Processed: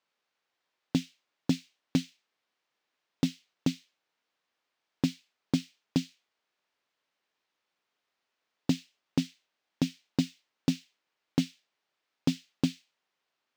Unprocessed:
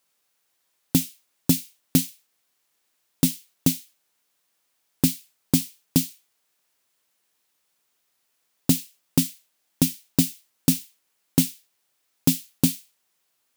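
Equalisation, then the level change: distance through air 180 m; bass shelf 160 Hz -10.5 dB; -2.5 dB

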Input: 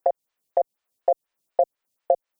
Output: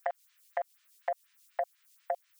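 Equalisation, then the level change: high-pass 1.4 kHz 24 dB/octave; +14.0 dB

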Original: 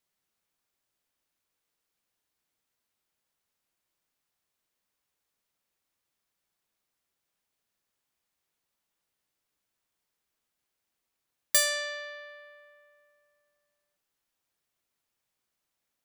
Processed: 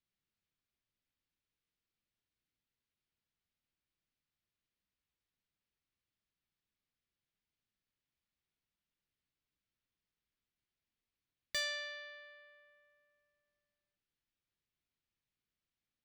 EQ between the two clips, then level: distance through air 240 m; peaking EQ 790 Hz -15 dB 2.7 oct; +2.0 dB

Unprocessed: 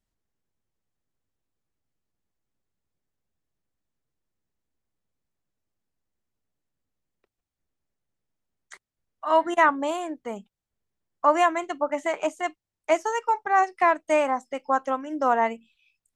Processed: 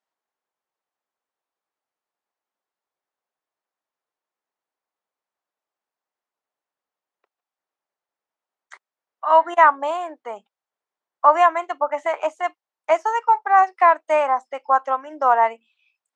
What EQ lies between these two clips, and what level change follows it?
high-pass 490 Hz 12 dB/octave; distance through air 60 m; peaking EQ 950 Hz +9 dB 1.7 oct; -1.0 dB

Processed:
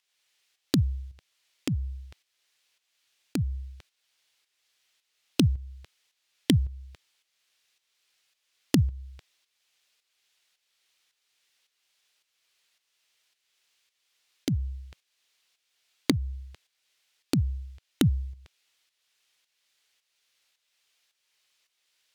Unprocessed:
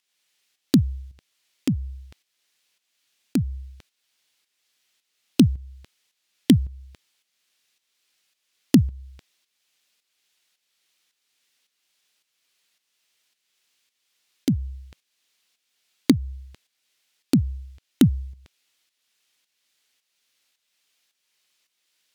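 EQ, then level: peaking EQ 230 Hz -11 dB 0.88 oct; treble shelf 8 kHz -5 dB; 0.0 dB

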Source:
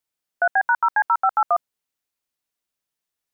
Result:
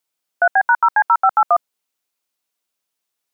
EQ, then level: high-pass 270 Hz 6 dB/octave; peaking EQ 1.8 kHz -4 dB 0.25 oct; +5.5 dB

